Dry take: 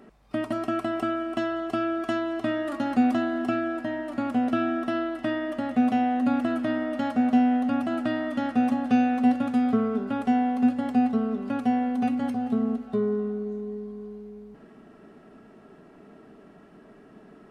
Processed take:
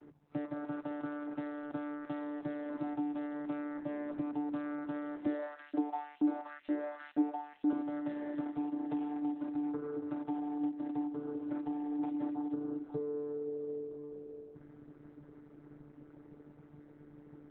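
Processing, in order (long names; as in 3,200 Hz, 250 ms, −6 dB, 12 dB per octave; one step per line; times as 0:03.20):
dynamic equaliser 210 Hz, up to −6 dB, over −37 dBFS, Q 2.7
downward compressor 8 to 1, threshold −32 dBFS, peak gain reduction 14 dB
channel vocoder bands 16, saw 147 Hz
0:05.26–0:07.73: auto-filter high-pass saw up 2.1 Hz 250–3,600 Hz
Opus 8 kbit/s 48,000 Hz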